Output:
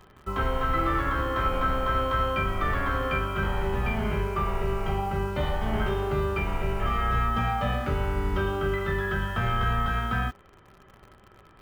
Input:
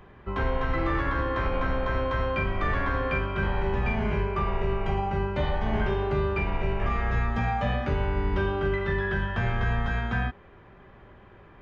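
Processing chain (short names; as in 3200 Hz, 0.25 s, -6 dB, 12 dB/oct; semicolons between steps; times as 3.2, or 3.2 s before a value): small resonant body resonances 1300/3100 Hz, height 16 dB, ringing for 80 ms; in parallel at -5.5 dB: bit-crush 7-bit; on the sum: gain -4.5 dB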